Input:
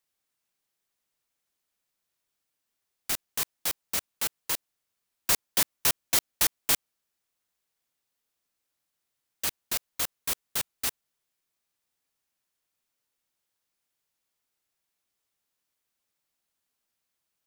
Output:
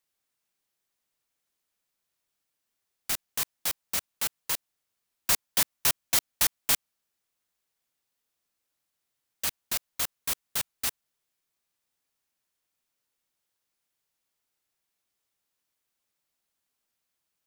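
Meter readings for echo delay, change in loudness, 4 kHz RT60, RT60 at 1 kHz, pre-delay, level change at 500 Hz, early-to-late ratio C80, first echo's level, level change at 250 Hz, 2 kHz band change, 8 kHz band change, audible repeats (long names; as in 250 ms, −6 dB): no echo audible, 0.0 dB, no reverb audible, no reverb audible, no reverb audible, −2.0 dB, no reverb audible, no echo audible, −2.0 dB, 0.0 dB, 0.0 dB, no echo audible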